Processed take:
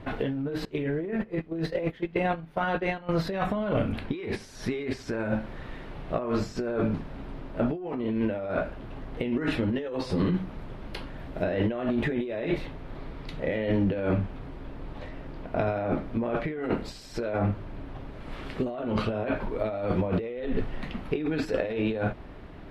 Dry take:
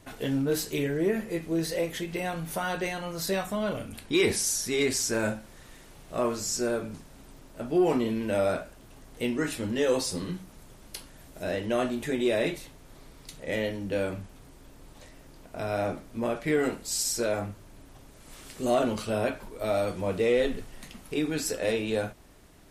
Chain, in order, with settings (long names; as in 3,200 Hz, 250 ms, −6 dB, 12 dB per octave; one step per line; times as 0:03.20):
0:00.65–0:03.09: noise gate −30 dBFS, range −21 dB
compressor whose output falls as the input rises −34 dBFS, ratio −1
high-frequency loss of the air 390 metres
level +7 dB